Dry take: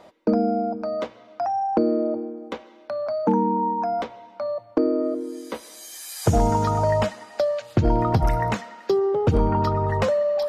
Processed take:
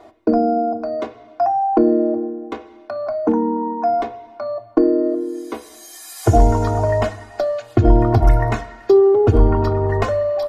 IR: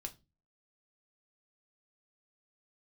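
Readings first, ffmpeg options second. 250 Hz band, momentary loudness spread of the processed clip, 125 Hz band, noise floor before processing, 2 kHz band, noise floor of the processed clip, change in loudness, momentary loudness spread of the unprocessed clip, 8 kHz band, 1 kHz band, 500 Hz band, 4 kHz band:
+5.5 dB, 16 LU, +5.5 dB, -49 dBFS, +3.5 dB, -45 dBFS, +5.5 dB, 13 LU, +0.5 dB, +3.5 dB, +5.5 dB, -1.0 dB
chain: -filter_complex "[0:a]aecho=1:1:2.8:0.98,asplit=2[s0][s1];[1:a]atrim=start_sample=2205,asetrate=29547,aresample=44100,lowpass=2000[s2];[s1][s2]afir=irnorm=-1:irlink=0,volume=1[s3];[s0][s3]amix=inputs=2:normalize=0,volume=0.75"

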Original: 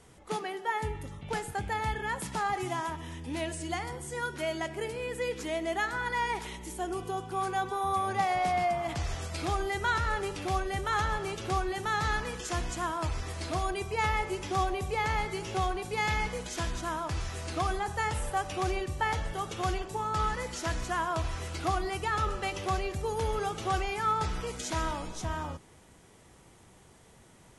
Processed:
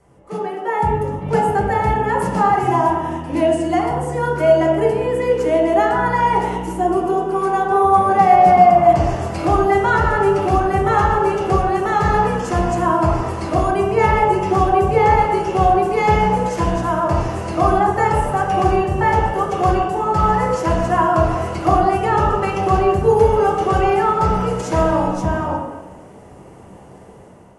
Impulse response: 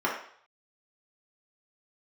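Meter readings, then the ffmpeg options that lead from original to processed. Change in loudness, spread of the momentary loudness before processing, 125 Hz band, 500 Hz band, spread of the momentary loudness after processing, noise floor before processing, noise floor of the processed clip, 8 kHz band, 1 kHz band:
+15.5 dB, 7 LU, +14.5 dB, +18.5 dB, 6 LU, -57 dBFS, -41 dBFS, +3.0 dB, +16.5 dB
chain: -filter_complex "[0:a]dynaudnorm=f=250:g=5:m=3.16[s0];[1:a]atrim=start_sample=2205,asetrate=22491,aresample=44100[s1];[s0][s1]afir=irnorm=-1:irlink=0,volume=0.299"

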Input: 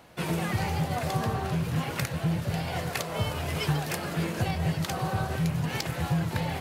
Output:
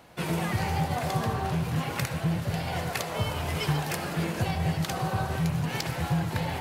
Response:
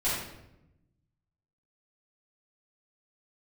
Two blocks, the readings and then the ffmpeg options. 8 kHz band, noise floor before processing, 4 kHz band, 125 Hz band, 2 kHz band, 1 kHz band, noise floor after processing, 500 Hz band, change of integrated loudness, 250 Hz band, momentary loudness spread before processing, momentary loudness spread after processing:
+0.5 dB, -37 dBFS, +0.5 dB, 0.0 dB, +0.5 dB, +1.5 dB, -36 dBFS, 0.0 dB, +0.5 dB, 0.0 dB, 3 LU, 2 LU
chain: -filter_complex "[0:a]asplit=2[s0][s1];[s1]lowshelf=f=620:t=q:w=3:g=-9.5[s2];[1:a]atrim=start_sample=2205,adelay=62[s3];[s2][s3]afir=irnorm=-1:irlink=0,volume=0.106[s4];[s0][s4]amix=inputs=2:normalize=0"

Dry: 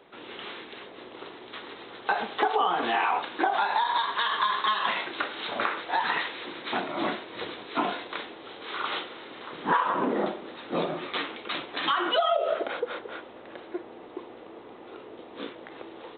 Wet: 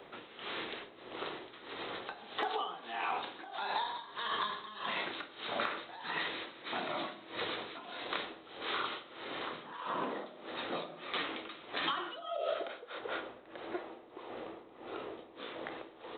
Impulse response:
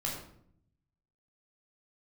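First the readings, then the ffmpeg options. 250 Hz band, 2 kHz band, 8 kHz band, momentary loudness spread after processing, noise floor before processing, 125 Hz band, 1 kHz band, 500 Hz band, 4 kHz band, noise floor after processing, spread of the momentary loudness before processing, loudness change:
-10.5 dB, -9.0 dB, no reading, 10 LU, -46 dBFS, -9.5 dB, -11.5 dB, -9.5 dB, -7.0 dB, -55 dBFS, 18 LU, -11.0 dB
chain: -filter_complex "[0:a]acrossover=split=500|3300[s0][s1][s2];[s0]acompressor=threshold=0.00447:ratio=4[s3];[s1]acompressor=threshold=0.0112:ratio=4[s4];[s2]acompressor=threshold=0.00501:ratio=4[s5];[s3][s4][s5]amix=inputs=3:normalize=0,tremolo=f=1.6:d=0.84,asplit=2[s6][s7];[1:a]atrim=start_sample=2205[s8];[s7][s8]afir=irnorm=-1:irlink=0,volume=0.266[s9];[s6][s9]amix=inputs=2:normalize=0,volume=1.19"

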